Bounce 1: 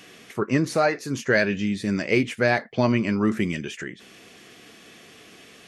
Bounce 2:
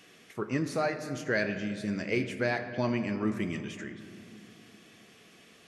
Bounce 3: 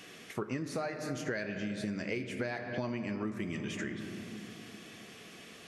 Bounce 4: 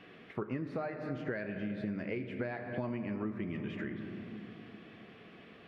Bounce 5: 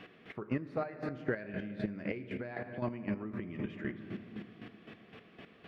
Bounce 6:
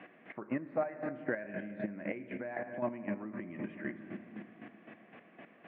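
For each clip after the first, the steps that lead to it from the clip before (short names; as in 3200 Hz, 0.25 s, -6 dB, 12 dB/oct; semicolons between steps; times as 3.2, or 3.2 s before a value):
reverb RT60 2.5 s, pre-delay 6 ms, DRR 8 dB; gain -9 dB
compressor 10:1, threshold -38 dBFS, peak gain reduction 14.5 dB; gain +5.5 dB
air absorption 430 m
chopper 3.9 Hz, depth 65%, duty 25%; gain +4 dB
speaker cabinet 250–2200 Hz, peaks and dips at 430 Hz -10 dB, 610 Hz +3 dB, 1300 Hz -6 dB; gain +3 dB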